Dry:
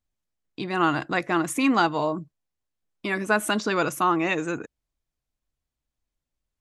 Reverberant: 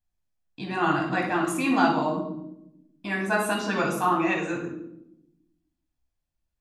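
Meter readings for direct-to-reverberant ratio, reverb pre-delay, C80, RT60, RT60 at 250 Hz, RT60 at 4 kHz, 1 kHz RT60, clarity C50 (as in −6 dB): −1.0 dB, 12 ms, 9.0 dB, 0.80 s, 1.4 s, 0.55 s, 0.70 s, 5.0 dB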